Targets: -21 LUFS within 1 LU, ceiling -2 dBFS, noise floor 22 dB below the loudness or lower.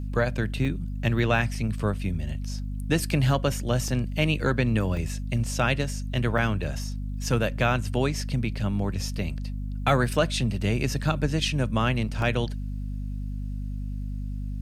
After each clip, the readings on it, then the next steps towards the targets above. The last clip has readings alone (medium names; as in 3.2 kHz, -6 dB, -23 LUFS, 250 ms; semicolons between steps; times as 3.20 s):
dropouts 6; longest dropout 2.1 ms; hum 50 Hz; highest harmonic 250 Hz; hum level -29 dBFS; loudness -27.0 LUFS; peak level -10.5 dBFS; loudness target -21.0 LUFS
-> interpolate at 0.65/1.55/3.88/4.97/6.38/12.22 s, 2.1 ms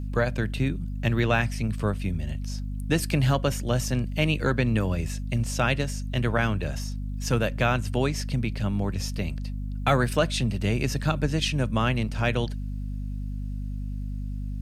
dropouts 0; hum 50 Hz; highest harmonic 250 Hz; hum level -29 dBFS
-> de-hum 50 Hz, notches 5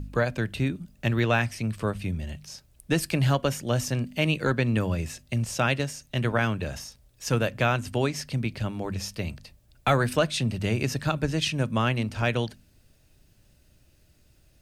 hum not found; loudness -27.0 LUFS; peak level -12.0 dBFS; loudness target -21.0 LUFS
-> trim +6 dB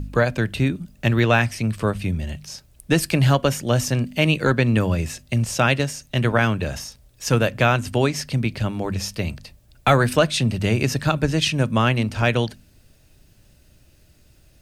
loudness -21.0 LUFS; peak level -6.0 dBFS; noise floor -55 dBFS